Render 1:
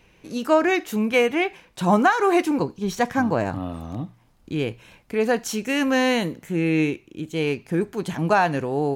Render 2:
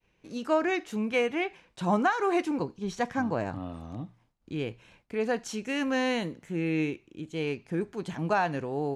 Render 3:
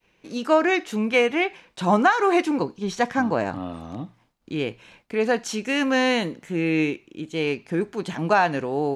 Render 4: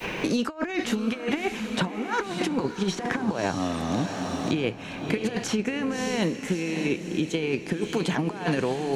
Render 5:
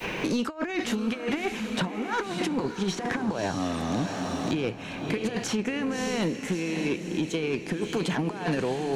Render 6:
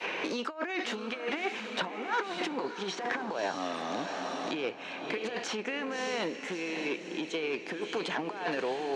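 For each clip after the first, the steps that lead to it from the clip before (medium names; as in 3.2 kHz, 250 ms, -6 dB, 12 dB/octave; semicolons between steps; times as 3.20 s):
Bessel low-pass 7.9 kHz, order 4; expander -50 dBFS; trim -7.5 dB
FFT filter 100 Hz 0 dB, 220 Hz +6 dB, 4 kHz +9 dB, 7.3 kHz +7 dB
compressor with a negative ratio -27 dBFS, ratio -0.5; on a send: echo that smears into a reverb 613 ms, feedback 42%, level -10.5 dB; on the sum: three bands compressed up and down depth 100%
saturation -19 dBFS, distortion -17 dB
band-pass 430–4900 Hz; trim -1 dB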